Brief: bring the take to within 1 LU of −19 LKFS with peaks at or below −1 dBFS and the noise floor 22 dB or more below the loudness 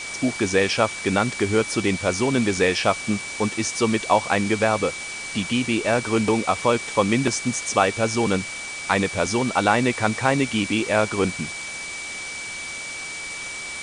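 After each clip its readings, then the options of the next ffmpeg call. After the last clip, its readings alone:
interfering tone 2,300 Hz; level of the tone −32 dBFS; background noise floor −33 dBFS; target noise floor −45 dBFS; integrated loudness −22.5 LKFS; sample peak −3.0 dBFS; target loudness −19.0 LKFS
→ -af "bandreject=frequency=2300:width=30"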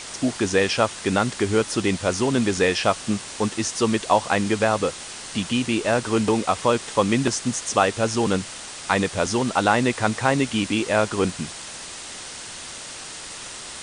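interfering tone none found; background noise floor −37 dBFS; target noise floor −45 dBFS
→ -af "afftdn=noise_reduction=8:noise_floor=-37"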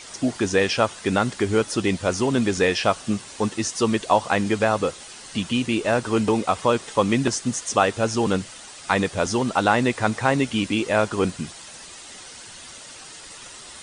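background noise floor −42 dBFS; target noise floor −45 dBFS
→ -af "afftdn=noise_reduction=6:noise_floor=-42"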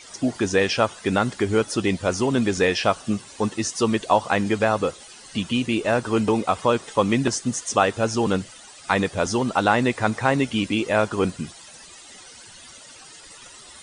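background noise floor −45 dBFS; integrated loudness −22.5 LKFS; sample peak −3.0 dBFS; target loudness −19.0 LKFS
→ -af "volume=3.5dB,alimiter=limit=-1dB:level=0:latency=1"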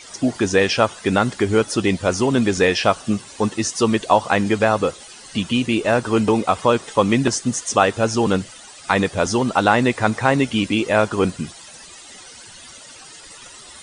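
integrated loudness −19.0 LKFS; sample peak −1.0 dBFS; background noise floor −42 dBFS

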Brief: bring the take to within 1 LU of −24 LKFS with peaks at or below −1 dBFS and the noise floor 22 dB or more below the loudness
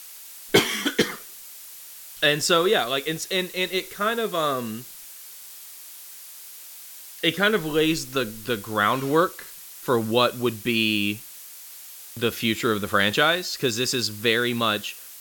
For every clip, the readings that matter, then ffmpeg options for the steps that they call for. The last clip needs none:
background noise floor −43 dBFS; target noise floor −45 dBFS; integrated loudness −23.0 LKFS; sample peak −3.0 dBFS; target loudness −24.0 LKFS
→ -af "afftdn=noise_reduction=6:noise_floor=-43"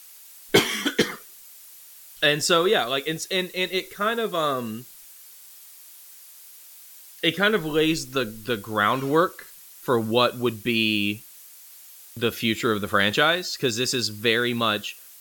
background noise floor −47 dBFS; integrated loudness −23.0 LKFS; sample peak −3.0 dBFS; target loudness −24.0 LKFS
→ -af "volume=-1dB"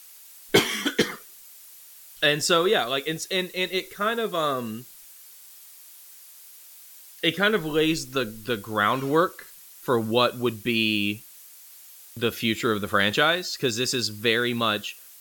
integrated loudness −24.0 LKFS; sample peak −4.0 dBFS; background noise floor −48 dBFS

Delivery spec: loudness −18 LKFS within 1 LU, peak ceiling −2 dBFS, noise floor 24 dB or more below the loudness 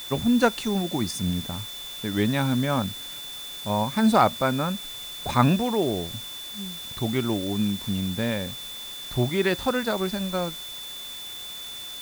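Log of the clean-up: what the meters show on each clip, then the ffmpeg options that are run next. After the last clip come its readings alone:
interfering tone 3,500 Hz; level of the tone −36 dBFS; background noise floor −37 dBFS; target noise floor −50 dBFS; integrated loudness −26.0 LKFS; sample peak −6.5 dBFS; target loudness −18.0 LKFS
→ -af "bandreject=frequency=3500:width=30"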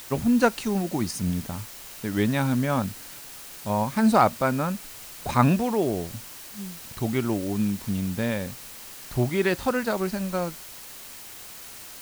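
interfering tone none found; background noise floor −42 dBFS; target noise floor −50 dBFS
→ -af "afftdn=noise_reduction=8:noise_floor=-42"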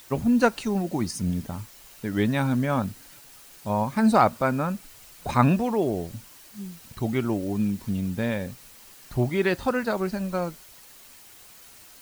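background noise floor −49 dBFS; target noise floor −50 dBFS
→ -af "afftdn=noise_reduction=6:noise_floor=-49"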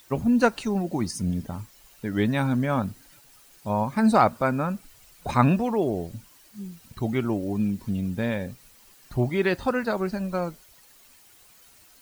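background noise floor −55 dBFS; integrated loudness −25.5 LKFS; sample peak −6.5 dBFS; target loudness −18.0 LKFS
→ -af "volume=7.5dB,alimiter=limit=-2dB:level=0:latency=1"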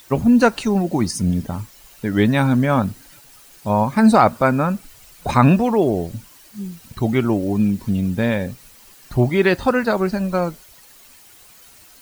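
integrated loudness −18.5 LKFS; sample peak −2.0 dBFS; background noise floor −47 dBFS

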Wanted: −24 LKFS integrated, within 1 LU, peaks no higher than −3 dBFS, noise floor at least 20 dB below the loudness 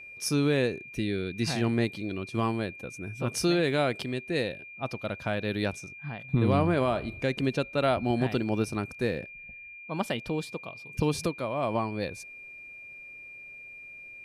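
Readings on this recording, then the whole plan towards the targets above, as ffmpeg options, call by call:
interfering tone 2,400 Hz; level of the tone −43 dBFS; integrated loudness −29.5 LKFS; sample peak −12.5 dBFS; target loudness −24.0 LKFS
→ -af "bandreject=frequency=2400:width=30"
-af "volume=5.5dB"

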